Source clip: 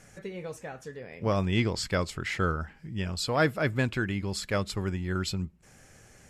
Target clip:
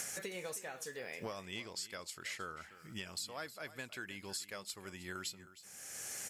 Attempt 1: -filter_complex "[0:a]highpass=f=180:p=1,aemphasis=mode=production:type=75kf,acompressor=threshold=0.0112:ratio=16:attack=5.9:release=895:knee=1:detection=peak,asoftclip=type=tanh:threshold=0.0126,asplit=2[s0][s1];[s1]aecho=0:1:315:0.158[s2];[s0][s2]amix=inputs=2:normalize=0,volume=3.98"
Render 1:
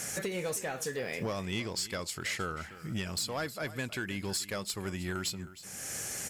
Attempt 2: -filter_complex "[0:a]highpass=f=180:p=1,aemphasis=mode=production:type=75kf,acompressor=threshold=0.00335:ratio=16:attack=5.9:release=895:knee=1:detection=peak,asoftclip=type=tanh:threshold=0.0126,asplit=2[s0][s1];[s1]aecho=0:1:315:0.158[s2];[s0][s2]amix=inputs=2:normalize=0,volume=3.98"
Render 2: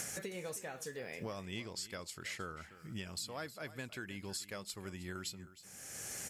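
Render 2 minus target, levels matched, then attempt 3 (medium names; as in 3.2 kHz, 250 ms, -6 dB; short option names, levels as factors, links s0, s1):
250 Hz band +4.0 dB
-filter_complex "[0:a]highpass=f=580:p=1,aemphasis=mode=production:type=75kf,acompressor=threshold=0.00335:ratio=16:attack=5.9:release=895:knee=1:detection=peak,asoftclip=type=tanh:threshold=0.0126,asplit=2[s0][s1];[s1]aecho=0:1:315:0.158[s2];[s0][s2]amix=inputs=2:normalize=0,volume=3.98"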